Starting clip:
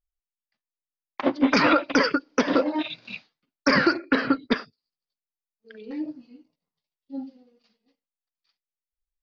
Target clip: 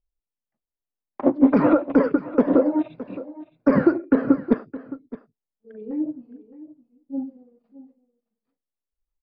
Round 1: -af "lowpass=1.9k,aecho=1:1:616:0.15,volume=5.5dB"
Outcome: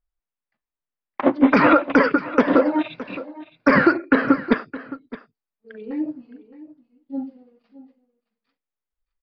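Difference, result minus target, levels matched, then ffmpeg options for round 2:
2000 Hz band +12.0 dB
-af "lowpass=650,aecho=1:1:616:0.15,volume=5.5dB"

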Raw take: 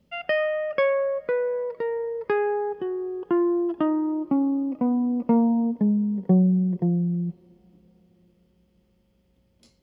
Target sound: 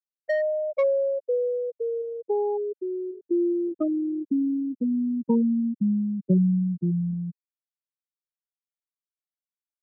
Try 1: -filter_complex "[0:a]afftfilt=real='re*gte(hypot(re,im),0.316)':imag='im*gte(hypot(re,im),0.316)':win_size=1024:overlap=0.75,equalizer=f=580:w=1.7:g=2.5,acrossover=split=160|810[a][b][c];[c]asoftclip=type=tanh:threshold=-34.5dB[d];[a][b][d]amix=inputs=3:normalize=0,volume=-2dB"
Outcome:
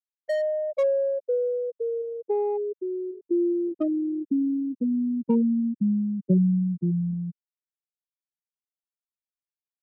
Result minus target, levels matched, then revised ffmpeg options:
soft clip: distortion +10 dB
-filter_complex "[0:a]afftfilt=real='re*gte(hypot(re,im),0.316)':imag='im*gte(hypot(re,im),0.316)':win_size=1024:overlap=0.75,equalizer=f=580:w=1.7:g=2.5,acrossover=split=160|810[a][b][c];[c]asoftclip=type=tanh:threshold=-24dB[d];[a][b][d]amix=inputs=3:normalize=0,volume=-2dB"

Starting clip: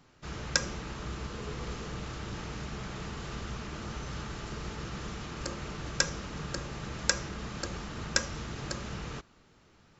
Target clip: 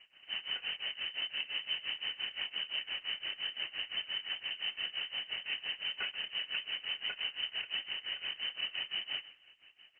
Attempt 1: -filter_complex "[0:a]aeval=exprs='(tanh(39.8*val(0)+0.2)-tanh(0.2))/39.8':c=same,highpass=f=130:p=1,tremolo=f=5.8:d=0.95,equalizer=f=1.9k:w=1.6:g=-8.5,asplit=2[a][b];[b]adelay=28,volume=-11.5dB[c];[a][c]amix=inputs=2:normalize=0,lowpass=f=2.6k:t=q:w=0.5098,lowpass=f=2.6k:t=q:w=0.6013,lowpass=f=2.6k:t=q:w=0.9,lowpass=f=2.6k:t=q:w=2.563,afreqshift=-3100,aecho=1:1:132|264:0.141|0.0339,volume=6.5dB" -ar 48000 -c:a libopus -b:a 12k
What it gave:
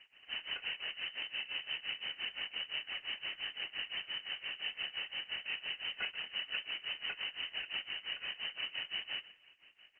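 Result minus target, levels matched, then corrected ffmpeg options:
125 Hz band +2.5 dB
-filter_complex "[0:a]aeval=exprs='(tanh(39.8*val(0)+0.2)-tanh(0.2))/39.8':c=same,highpass=f=35:p=1,tremolo=f=5.8:d=0.95,equalizer=f=1.9k:w=1.6:g=-8.5,asplit=2[a][b];[b]adelay=28,volume=-11.5dB[c];[a][c]amix=inputs=2:normalize=0,lowpass=f=2.6k:t=q:w=0.5098,lowpass=f=2.6k:t=q:w=0.6013,lowpass=f=2.6k:t=q:w=0.9,lowpass=f=2.6k:t=q:w=2.563,afreqshift=-3100,aecho=1:1:132|264:0.141|0.0339,volume=6.5dB" -ar 48000 -c:a libopus -b:a 12k

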